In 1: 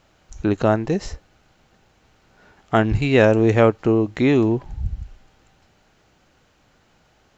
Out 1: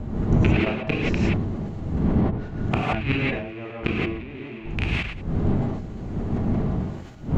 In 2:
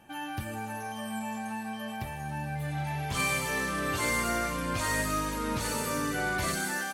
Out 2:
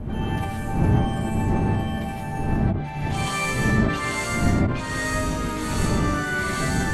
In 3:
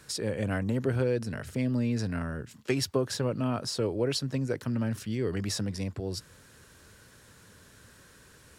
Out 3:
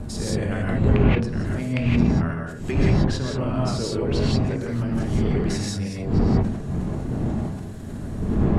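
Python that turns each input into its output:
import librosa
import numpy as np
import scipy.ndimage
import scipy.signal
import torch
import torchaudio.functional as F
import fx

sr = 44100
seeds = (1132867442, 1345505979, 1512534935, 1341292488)

y = fx.rattle_buzz(x, sr, strikes_db=-24.0, level_db=-10.0)
y = fx.dmg_wind(y, sr, seeds[0], corner_hz=190.0, level_db=-25.0)
y = fx.env_lowpass_down(y, sr, base_hz=2900.0, full_db=-15.5)
y = fx.notch(y, sr, hz=500.0, q=16.0)
y = fx.gate_flip(y, sr, shuts_db=-9.0, range_db=-24)
y = fx.peak_eq(y, sr, hz=5200.0, db=-3.0, octaves=0.43)
y = fx.rev_gated(y, sr, seeds[1], gate_ms=200, shape='rising', drr_db=-5.0)
y = fx.sustainer(y, sr, db_per_s=60.0)
y = F.gain(torch.from_numpy(y), -1.5).numpy()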